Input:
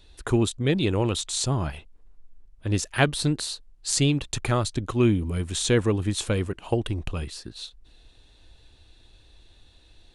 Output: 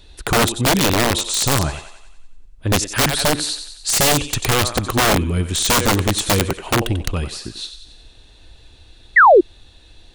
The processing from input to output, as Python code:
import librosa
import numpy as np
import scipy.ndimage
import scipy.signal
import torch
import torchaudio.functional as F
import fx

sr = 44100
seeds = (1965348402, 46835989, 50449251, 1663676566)

y = fx.echo_thinned(x, sr, ms=92, feedback_pct=56, hz=520.0, wet_db=-9)
y = (np.mod(10.0 ** (17.5 / 20.0) * y + 1.0, 2.0) - 1.0) / 10.0 ** (17.5 / 20.0)
y = fx.spec_paint(y, sr, seeds[0], shape='fall', start_s=9.16, length_s=0.25, low_hz=320.0, high_hz=2100.0, level_db=-16.0)
y = F.gain(torch.from_numpy(y), 8.0).numpy()